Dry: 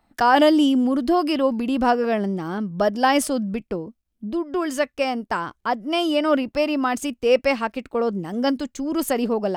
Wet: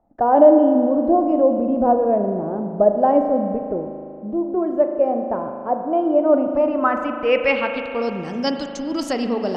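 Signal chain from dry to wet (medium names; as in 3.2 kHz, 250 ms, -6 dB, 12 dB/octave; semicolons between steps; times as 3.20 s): low-pass sweep 630 Hz -> 5.4 kHz, 6.20–8.10 s; spring tank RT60 2.6 s, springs 38 ms, chirp 65 ms, DRR 5 dB; trim -1.5 dB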